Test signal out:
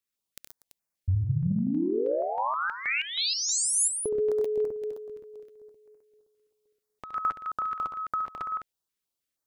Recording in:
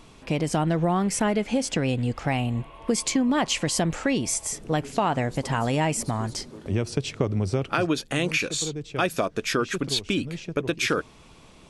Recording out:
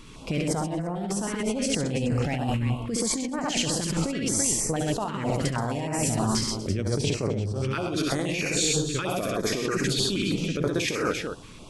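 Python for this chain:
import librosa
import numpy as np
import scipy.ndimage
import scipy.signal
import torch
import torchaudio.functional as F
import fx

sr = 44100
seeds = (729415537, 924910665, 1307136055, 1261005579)

y = fx.echo_multitap(x, sr, ms=(69, 97, 128, 138, 241, 336), db=(-4.0, -11.5, -3.0, -13.5, -16.5, -11.0))
y = fx.over_compress(y, sr, threshold_db=-26.0, ratio=-1.0)
y = fx.filter_held_notch(y, sr, hz=6.3, low_hz=710.0, high_hz=3400.0)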